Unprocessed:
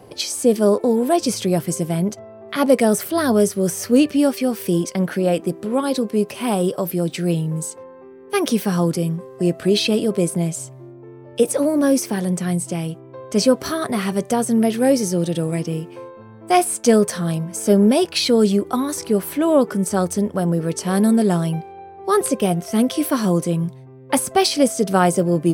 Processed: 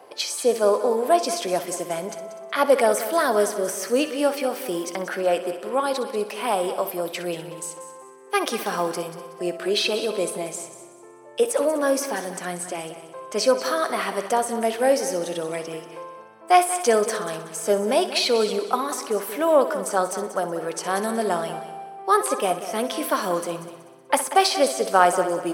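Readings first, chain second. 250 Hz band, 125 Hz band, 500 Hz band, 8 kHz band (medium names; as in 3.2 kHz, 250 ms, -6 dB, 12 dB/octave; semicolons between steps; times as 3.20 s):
-12.5 dB, -19.0 dB, -2.5 dB, -3.5 dB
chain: high-pass 710 Hz 12 dB/octave; treble shelf 2.1 kHz -9.5 dB; multi-head delay 62 ms, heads first and third, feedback 51%, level -13 dB; trim +5 dB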